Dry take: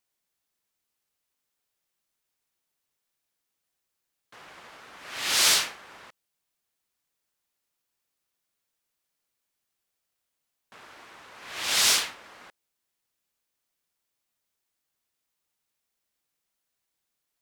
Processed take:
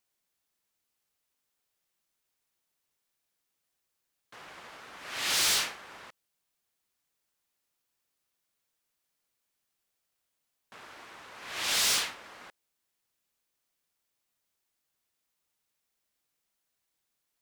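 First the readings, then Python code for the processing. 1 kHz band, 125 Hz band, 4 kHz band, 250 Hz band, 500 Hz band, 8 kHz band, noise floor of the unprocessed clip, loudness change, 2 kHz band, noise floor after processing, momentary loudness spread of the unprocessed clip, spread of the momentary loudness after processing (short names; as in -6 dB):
-3.5 dB, -1.0 dB, -4.5 dB, -2.5 dB, -3.0 dB, -4.5 dB, -82 dBFS, -5.0 dB, -3.5 dB, -82 dBFS, 17 LU, 22 LU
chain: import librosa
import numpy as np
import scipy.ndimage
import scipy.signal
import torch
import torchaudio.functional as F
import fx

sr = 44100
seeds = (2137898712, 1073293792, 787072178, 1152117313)

y = 10.0 ** (-22.5 / 20.0) * np.tanh(x / 10.0 ** (-22.5 / 20.0))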